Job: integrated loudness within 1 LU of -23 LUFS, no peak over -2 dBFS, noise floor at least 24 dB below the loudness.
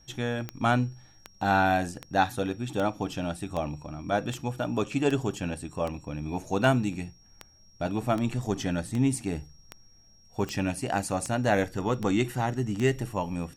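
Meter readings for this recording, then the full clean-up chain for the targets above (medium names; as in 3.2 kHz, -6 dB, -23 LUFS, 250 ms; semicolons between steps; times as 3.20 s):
clicks found 17; steady tone 5.6 kHz; tone level -58 dBFS; loudness -29.0 LUFS; peak level -10.0 dBFS; loudness target -23.0 LUFS
-> de-click; band-stop 5.6 kHz, Q 30; trim +6 dB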